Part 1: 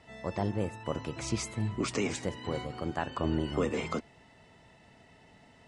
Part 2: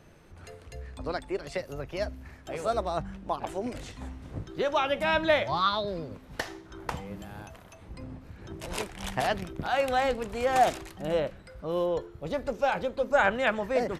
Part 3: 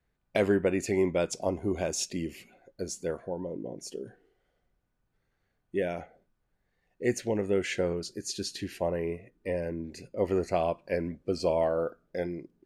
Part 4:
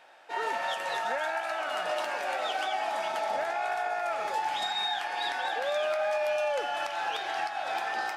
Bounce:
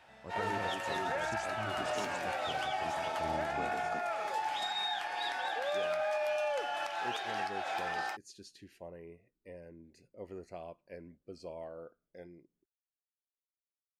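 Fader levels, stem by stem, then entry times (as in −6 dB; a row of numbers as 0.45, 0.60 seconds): −13.0 dB, muted, −18.0 dB, −4.5 dB; 0.00 s, muted, 0.00 s, 0.00 s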